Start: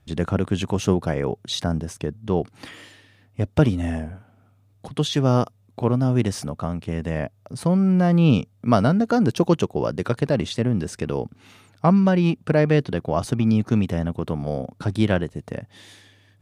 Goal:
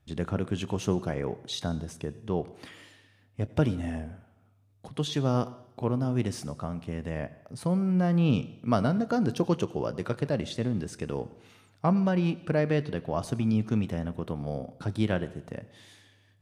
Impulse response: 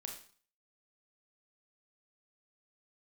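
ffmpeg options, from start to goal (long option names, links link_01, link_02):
-filter_complex "[0:a]asplit=2[link_01][link_02];[1:a]atrim=start_sample=2205,asetrate=25137,aresample=44100,adelay=28[link_03];[link_02][link_03]afir=irnorm=-1:irlink=0,volume=-15dB[link_04];[link_01][link_04]amix=inputs=2:normalize=0,volume=-7.5dB"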